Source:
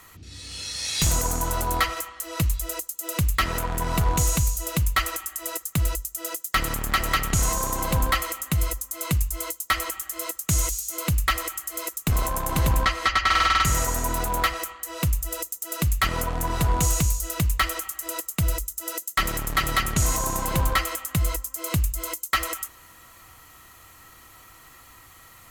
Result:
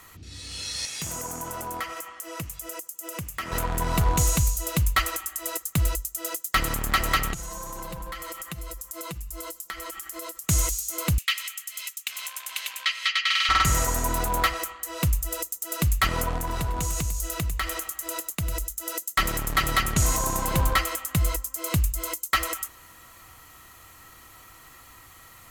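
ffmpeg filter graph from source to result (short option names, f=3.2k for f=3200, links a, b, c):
-filter_complex "[0:a]asettb=1/sr,asplit=3[a][b][c];[a]atrim=end=0.854[d];[b]atrim=start=0.85:end=3.52,asetpts=PTS-STARTPTS,afade=t=in:d=0.004:c=qsin,afade=t=out:st=2.666:d=0.004:c=qsin,highpass=130,equalizer=f=4k:w=3.9:g=-8.5,acompressor=threshold=-35dB:ratio=2:attack=3.2:release=140:knee=1:detection=peak[e];[c]atrim=start=3.516[f];[d][e]acrossfade=d=0.004:c1=hsin:c2=qsin[g];[g][f]acrossfade=d=0.004:c1=qsin:c2=hsin,asettb=1/sr,asplit=3[h][i][j];[h]atrim=end=7.334[k];[i]atrim=start=7.33:end=10.44,asetpts=PTS-STARTPTS,afade=t=in:d=0.004:c=qsin,afade=t=out:st=3.106:d=0.004:c=qsin,aecho=1:1:5.9:0.85,atrim=end_sample=137151,acompressor=threshold=-32dB:ratio=10:attack=3.2:release=140:knee=1:detection=peak[l];[j]atrim=start=10.436[m];[k][l]acrossfade=d=0.004:c1=hsin:c2=qsin[n];[n][m]acrossfade=d=0.004:c1=qsin:c2=hsin,asettb=1/sr,asplit=3[o][p][q];[o]atrim=end=11.184[r];[p]atrim=start=11.18:end=13.49,asetpts=PTS-STARTPTS,afade=t=in:d=0.004:c=qsin,afade=t=out:st=2.306:d=0.004:c=qsin,highpass=f=2.7k:t=q:w=1.9,highshelf=f=5.6k:g=-5.5[s];[q]atrim=start=13.486[t];[r][s]acrossfade=d=0.004:c1=hsin:c2=qsin[u];[u][t]acrossfade=d=0.004:c1=qsin:c2=hsin,asettb=1/sr,asplit=3[v][w][x];[v]atrim=end=16.374[y];[w]atrim=start=16.37:end=18.92,asetpts=PTS-STARTPTS,afade=t=in:d=0.004:c=qsin,afade=t=out:st=2.546:d=0.004:c=qsin,acompressor=threshold=-24dB:ratio=6:attack=3.2:release=140:knee=1:detection=peak,aeval=exprs='sgn(val(0))*max(abs(val(0))-0.00106,0)':c=same,aecho=1:1:99:0.188,atrim=end_sample=112455[z];[x]atrim=start=18.916[aa];[y][z]acrossfade=d=0.004:c1=hsin:c2=qsin[ab];[ab][aa]acrossfade=d=0.004:c1=qsin:c2=hsin"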